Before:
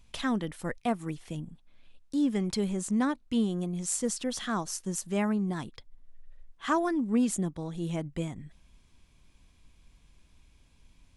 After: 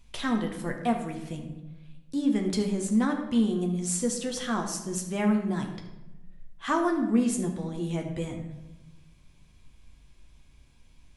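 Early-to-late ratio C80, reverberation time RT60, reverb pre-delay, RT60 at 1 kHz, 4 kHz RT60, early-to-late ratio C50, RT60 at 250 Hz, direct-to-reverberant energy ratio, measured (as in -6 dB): 9.0 dB, 1.0 s, 8 ms, 0.95 s, 0.70 s, 6.5 dB, 1.4 s, 2.0 dB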